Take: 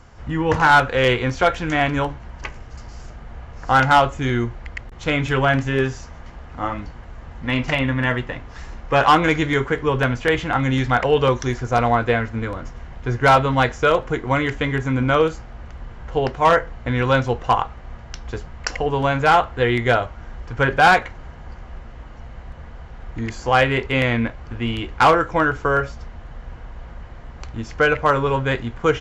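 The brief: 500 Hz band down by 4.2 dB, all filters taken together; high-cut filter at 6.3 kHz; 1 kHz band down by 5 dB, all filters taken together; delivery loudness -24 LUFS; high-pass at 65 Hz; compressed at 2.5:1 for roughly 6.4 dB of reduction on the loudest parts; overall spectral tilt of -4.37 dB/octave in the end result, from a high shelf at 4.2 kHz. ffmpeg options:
-af "highpass=65,lowpass=6300,equalizer=f=500:t=o:g=-3.5,equalizer=f=1000:t=o:g=-6,highshelf=f=4200:g=3,acompressor=threshold=0.0708:ratio=2.5,volume=1.41"

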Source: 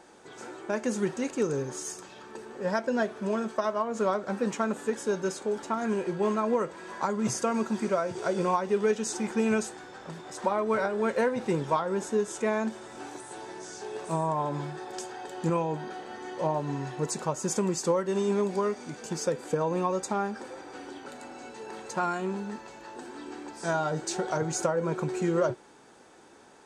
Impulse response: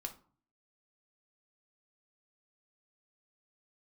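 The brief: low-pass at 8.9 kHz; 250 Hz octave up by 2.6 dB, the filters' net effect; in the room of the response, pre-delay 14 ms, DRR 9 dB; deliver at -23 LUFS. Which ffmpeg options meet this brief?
-filter_complex "[0:a]lowpass=8900,equalizer=f=250:t=o:g=3.5,asplit=2[s0][s1];[1:a]atrim=start_sample=2205,adelay=14[s2];[s1][s2]afir=irnorm=-1:irlink=0,volume=0.447[s3];[s0][s3]amix=inputs=2:normalize=0,volume=1.78"

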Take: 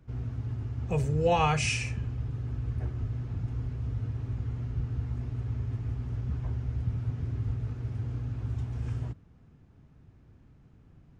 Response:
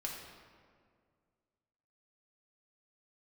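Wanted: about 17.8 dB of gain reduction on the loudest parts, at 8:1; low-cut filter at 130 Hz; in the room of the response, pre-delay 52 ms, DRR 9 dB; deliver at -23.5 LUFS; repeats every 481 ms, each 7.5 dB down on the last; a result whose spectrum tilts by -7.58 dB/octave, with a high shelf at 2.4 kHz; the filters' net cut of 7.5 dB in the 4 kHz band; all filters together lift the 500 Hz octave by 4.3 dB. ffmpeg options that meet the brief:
-filter_complex "[0:a]highpass=130,equalizer=f=500:t=o:g=5,highshelf=f=2400:g=-5,equalizer=f=4000:t=o:g=-7,acompressor=threshold=0.0158:ratio=8,aecho=1:1:481|962|1443|1924|2405:0.422|0.177|0.0744|0.0312|0.0131,asplit=2[s0][s1];[1:a]atrim=start_sample=2205,adelay=52[s2];[s1][s2]afir=irnorm=-1:irlink=0,volume=0.335[s3];[s0][s3]amix=inputs=2:normalize=0,volume=7.5"

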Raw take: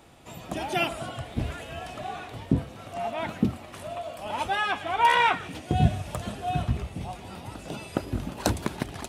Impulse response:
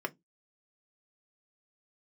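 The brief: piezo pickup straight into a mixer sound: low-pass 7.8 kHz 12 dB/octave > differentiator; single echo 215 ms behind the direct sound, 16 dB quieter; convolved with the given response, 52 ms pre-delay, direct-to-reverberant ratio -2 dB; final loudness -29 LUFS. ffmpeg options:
-filter_complex "[0:a]aecho=1:1:215:0.158,asplit=2[s0][s1];[1:a]atrim=start_sample=2205,adelay=52[s2];[s1][s2]afir=irnorm=-1:irlink=0,volume=0.75[s3];[s0][s3]amix=inputs=2:normalize=0,lowpass=7800,aderivative,volume=3.16"

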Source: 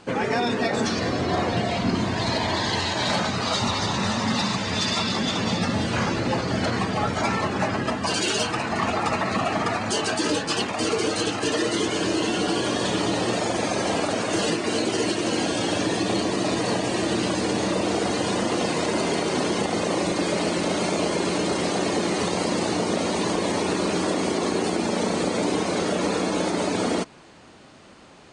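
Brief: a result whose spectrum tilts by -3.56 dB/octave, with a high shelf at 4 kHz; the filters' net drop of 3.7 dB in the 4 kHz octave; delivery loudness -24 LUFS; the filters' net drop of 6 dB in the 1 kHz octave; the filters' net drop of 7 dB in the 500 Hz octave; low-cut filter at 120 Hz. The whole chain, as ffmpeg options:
-af "highpass=120,equalizer=f=500:t=o:g=-8,equalizer=f=1000:t=o:g=-5,highshelf=f=4000:g=3.5,equalizer=f=4000:t=o:g=-6.5,volume=1.5"

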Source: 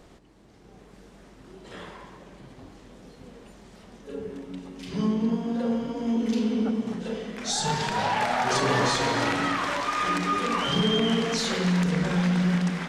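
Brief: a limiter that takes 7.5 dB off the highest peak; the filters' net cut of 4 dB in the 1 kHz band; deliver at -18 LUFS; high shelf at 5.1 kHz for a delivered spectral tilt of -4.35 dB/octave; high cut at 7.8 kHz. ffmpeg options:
-af "lowpass=7800,equalizer=f=1000:t=o:g=-5.5,highshelf=f=5100:g=8,volume=3.35,alimiter=limit=0.335:level=0:latency=1"

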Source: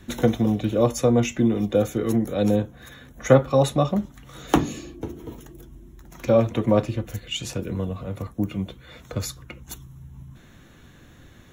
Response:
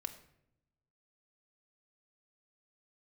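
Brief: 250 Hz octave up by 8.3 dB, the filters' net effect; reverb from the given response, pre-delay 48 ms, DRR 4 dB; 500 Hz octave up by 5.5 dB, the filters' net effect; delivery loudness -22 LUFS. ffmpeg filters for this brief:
-filter_complex "[0:a]equalizer=f=250:t=o:g=9,equalizer=f=500:t=o:g=4,asplit=2[s0][s1];[1:a]atrim=start_sample=2205,adelay=48[s2];[s1][s2]afir=irnorm=-1:irlink=0,volume=0.794[s3];[s0][s3]amix=inputs=2:normalize=0,volume=0.422"

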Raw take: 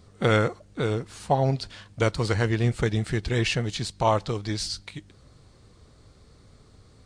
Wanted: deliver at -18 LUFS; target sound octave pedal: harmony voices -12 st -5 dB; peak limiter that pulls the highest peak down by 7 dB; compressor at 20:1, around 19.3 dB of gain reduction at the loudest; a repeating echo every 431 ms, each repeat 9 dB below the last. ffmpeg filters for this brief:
-filter_complex "[0:a]acompressor=threshold=0.0158:ratio=20,alimiter=level_in=2.66:limit=0.0631:level=0:latency=1,volume=0.376,aecho=1:1:431|862|1293|1724:0.355|0.124|0.0435|0.0152,asplit=2[s0][s1];[s1]asetrate=22050,aresample=44100,atempo=2,volume=0.562[s2];[s0][s2]amix=inputs=2:normalize=0,volume=15.8"

